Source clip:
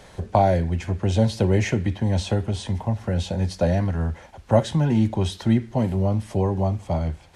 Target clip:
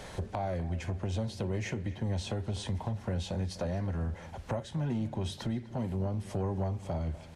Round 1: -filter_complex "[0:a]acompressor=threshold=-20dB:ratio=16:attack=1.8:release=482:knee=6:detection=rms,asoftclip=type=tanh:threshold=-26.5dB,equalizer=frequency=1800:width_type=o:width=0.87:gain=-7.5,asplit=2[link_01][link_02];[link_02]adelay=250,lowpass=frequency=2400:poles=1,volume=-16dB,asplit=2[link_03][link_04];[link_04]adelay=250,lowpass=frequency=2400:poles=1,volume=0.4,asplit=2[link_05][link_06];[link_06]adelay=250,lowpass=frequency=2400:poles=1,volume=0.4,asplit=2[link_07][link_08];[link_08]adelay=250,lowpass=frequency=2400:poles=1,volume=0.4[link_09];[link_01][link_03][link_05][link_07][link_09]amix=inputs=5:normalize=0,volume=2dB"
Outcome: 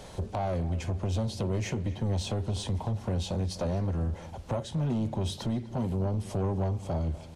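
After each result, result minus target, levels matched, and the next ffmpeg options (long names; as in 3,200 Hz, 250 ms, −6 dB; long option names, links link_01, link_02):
downward compressor: peak gain reduction −6 dB; 2,000 Hz band −4.0 dB
-filter_complex "[0:a]acompressor=threshold=-26.5dB:ratio=16:attack=1.8:release=482:knee=6:detection=rms,asoftclip=type=tanh:threshold=-26.5dB,equalizer=frequency=1800:width_type=o:width=0.87:gain=-7.5,asplit=2[link_01][link_02];[link_02]adelay=250,lowpass=frequency=2400:poles=1,volume=-16dB,asplit=2[link_03][link_04];[link_04]adelay=250,lowpass=frequency=2400:poles=1,volume=0.4,asplit=2[link_05][link_06];[link_06]adelay=250,lowpass=frequency=2400:poles=1,volume=0.4,asplit=2[link_07][link_08];[link_08]adelay=250,lowpass=frequency=2400:poles=1,volume=0.4[link_09];[link_01][link_03][link_05][link_07][link_09]amix=inputs=5:normalize=0,volume=2dB"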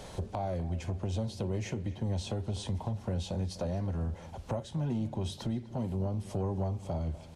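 2,000 Hz band −5.5 dB
-filter_complex "[0:a]acompressor=threshold=-26.5dB:ratio=16:attack=1.8:release=482:knee=6:detection=rms,asoftclip=type=tanh:threshold=-26.5dB,asplit=2[link_01][link_02];[link_02]adelay=250,lowpass=frequency=2400:poles=1,volume=-16dB,asplit=2[link_03][link_04];[link_04]adelay=250,lowpass=frequency=2400:poles=1,volume=0.4,asplit=2[link_05][link_06];[link_06]adelay=250,lowpass=frequency=2400:poles=1,volume=0.4,asplit=2[link_07][link_08];[link_08]adelay=250,lowpass=frequency=2400:poles=1,volume=0.4[link_09];[link_01][link_03][link_05][link_07][link_09]amix=inputs=5:normalize=0,volume=2dB"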